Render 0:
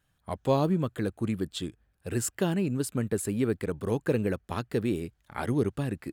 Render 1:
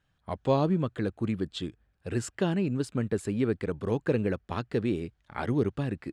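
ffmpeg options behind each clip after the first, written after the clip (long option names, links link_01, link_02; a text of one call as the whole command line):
ffmpeg -i in.wav -af "lowpass=5300" out.wav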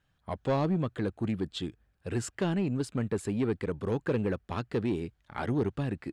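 ffmpeg -i in.wav -af "asoftclip=type=tanh:threshold=-21dB" out.wav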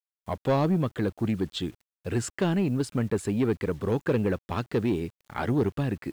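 ffmpeg -i in.wav -af "acrusher=bits=9:mix=0:aa=0.000001,volume=4dB" out.wav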